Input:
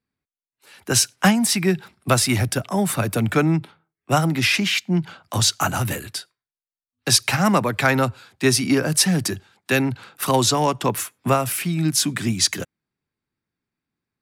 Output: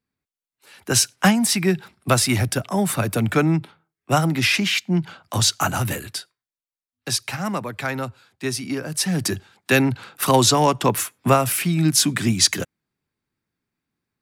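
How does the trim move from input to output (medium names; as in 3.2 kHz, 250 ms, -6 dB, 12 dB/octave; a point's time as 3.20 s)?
6.16 s 0 dB
7.30 s -8 dB
8.91 s -8 dB
9.34 s +2.5 dB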